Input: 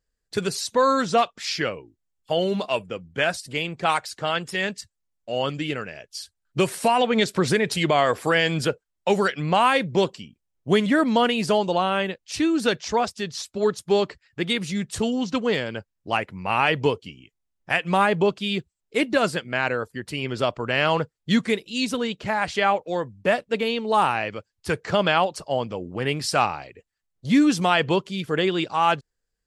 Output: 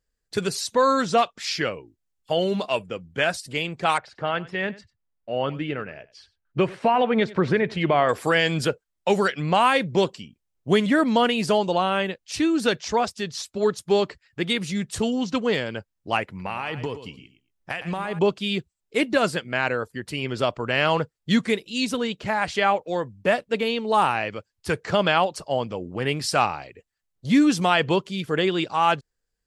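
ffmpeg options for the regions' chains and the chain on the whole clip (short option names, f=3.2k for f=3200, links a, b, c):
-filter_complex "[0:a]asettb=1/sr,asplit=3[a][b][c];[a]atrim=end=3.984[d];[b]atrim=start=3.98:end=8.09,asetpts=PTS-STARTPTS,afade=t=in:d=0.004:c=qsin,afade=t=out:st=4.106:d=0.004:c=qsin,lowpass=2.3k,aecho=1:1:95:0.1,atrim=end_sample=181251[e];[c]atrim=start=8.086[f];[d][e]acrossfade=d=0.004:c1=hsin:c2=qsin[g];[g][f]acrossfade=d=0.004:c1=qsin:c2=hsin,asettb=1/sr,asplit=3[h][i][j];[h]atrim=end=16.244[k];[i]atrim=start=16.24:end=18.19,asetpts=PTS-STARTPTS,afade=t=in:d=0.004:c=qsin,afade=t=out:st=1.946:d=0.004:c=qsin,acompressor=threshold=-24dB:ratio=12:attack=3.2:release=140:knee=1:detection=peak,aecho=1:1:112|224:0.266|0.0452,atrim=end_sample=85995[l];[j]atrim=start=18.186[m];[k][l]acrossfade=d=0.004:c1=hsin:c2=qsin[n];[n][m]acrossfade=d=0.004:c1=qsin:c2=hsin"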